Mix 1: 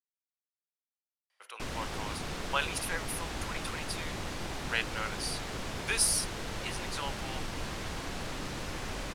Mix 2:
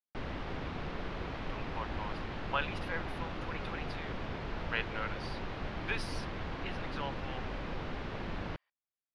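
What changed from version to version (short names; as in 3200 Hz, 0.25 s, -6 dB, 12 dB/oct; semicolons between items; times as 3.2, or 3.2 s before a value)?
background: entry -1.45 s; master: add air absorption 310 m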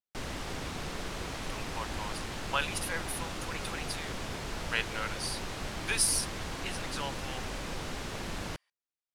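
master: remove air absorption 310 m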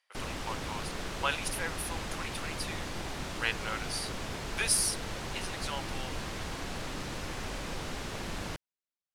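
speech: entry -1.30 s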